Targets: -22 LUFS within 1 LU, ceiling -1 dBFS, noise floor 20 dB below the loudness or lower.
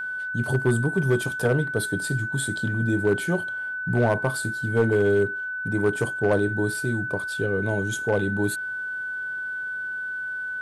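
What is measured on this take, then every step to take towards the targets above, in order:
clipped samples 0.4%; clipping level -13.0 dBFS; steady tone 1.5 kHz; tone level -28 dBFS; loudness -25.0 LUFS; peak level -13.0 dBFS; loudness target -22.0 LUFS
-> clip repair -13 dBFS; band-stop 1.5 kHz, Q 30; trim +3 dB

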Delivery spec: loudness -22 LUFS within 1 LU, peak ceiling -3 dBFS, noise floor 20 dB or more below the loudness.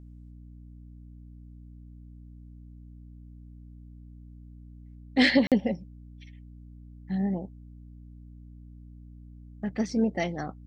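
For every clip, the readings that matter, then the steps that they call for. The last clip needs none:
dropouts 1; longest dropout 47 ms; hum 60 Hz; highest harmonic 300 Hz; hum level -44 dBFS; loudness -27.0 LUFS; peak level -9.0 dBFS; loudness target -22.0 LUFS
-> interpolate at 5.47 s, 47 ms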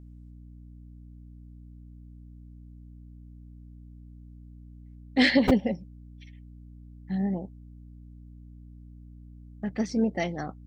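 dropouts 0; hum 60 Hz; highest harmonic 180 Hz; hum level -45 dBFS
-> de-hum 60 Hz, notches 3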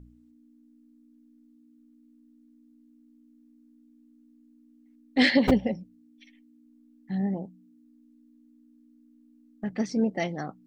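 hum not found; loudness -27.0 LUFS; peak level -6.5 dBFS; loudness target -22.0 LUFS
-> trim +5 dB; peak limiter -3 dBFS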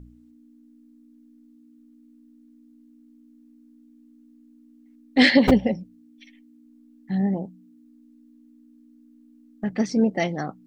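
loudness -22.0 LUFS; peak level -3.0 dBFS; noise floor -54 dBFS

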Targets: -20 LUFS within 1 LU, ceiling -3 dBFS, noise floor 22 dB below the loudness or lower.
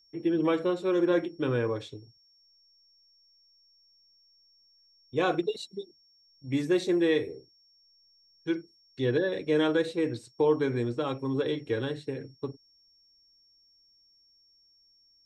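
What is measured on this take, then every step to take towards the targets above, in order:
steady tone 5.5 kHz; tone level -61 dBFS; loudness -29.0 LUFS; peak level -14.0 dBFS; loudness target -20.0 LUFS
-> band-stop 5.5 kHz, Q 30; trim +9 dB

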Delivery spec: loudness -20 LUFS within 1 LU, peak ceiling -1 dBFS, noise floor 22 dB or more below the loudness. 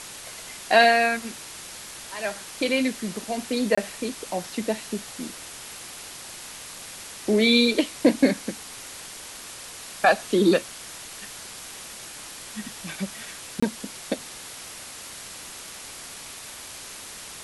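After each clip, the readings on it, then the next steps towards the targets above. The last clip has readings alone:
dropouts 2; longest dropout 25 ms; noise floor -41 dBFS; noise floor target -47 dBFS; loudness -24.5 LUFS; peak level -5.0 dBFS; loudness target -20.0 LUFS
-> interpolate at 3.75/13.60 s, 25 ms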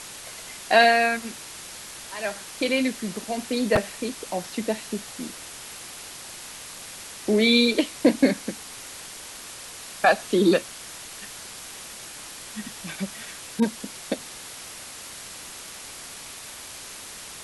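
dropouts 0; noise floor -41 dBFS; noise floor target -46 dBFS
-> noise reduction 6 dB, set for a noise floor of -41 dBFS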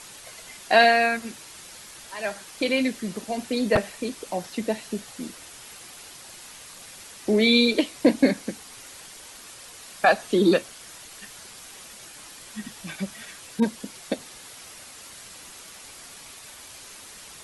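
noise floor -45 dBFS; noise floor target -46 dBFS
-> noise reduction 6 dB, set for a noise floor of -45 dBFS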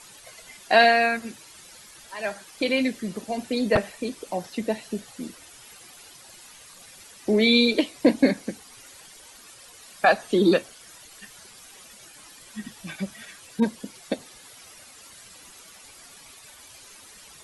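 noise floor -49 dBFS; loudness -23.5 LUFS; peak level -5.0 dBFS; loudness target -20.0 LUFS
-> trim +3.5 dB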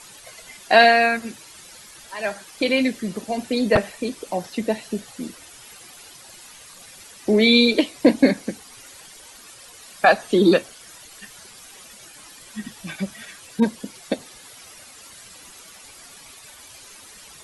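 loudness -20.0 LUFS; peak level -1.5 dBFS; noise floor -45 dBFS

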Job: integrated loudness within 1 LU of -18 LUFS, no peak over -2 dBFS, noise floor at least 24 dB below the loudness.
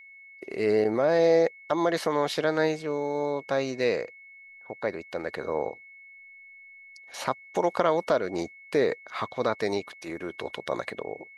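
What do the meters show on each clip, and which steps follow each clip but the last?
steady tone 2.2 kHz; tone level -47 dBFS; loudness -27.5 LUFS; peak level -6.5 dBFS; loudness target -18.0 LUFS
-> band-stop 2.2 kHz, Q 30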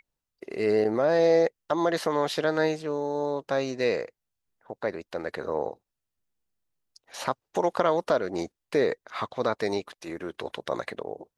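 steady tone not found; loudness -27.5 LUFS; peak level -6.5 dBFS; loudness target -18.0 LUFS
-> trim +9.5 dB; peak limiter -2 dBFS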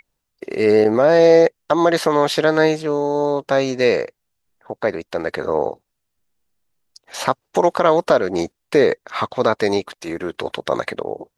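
loudness -18.5 LUFS; peak level -2.0 dBFS; noise floor -76 dBFS

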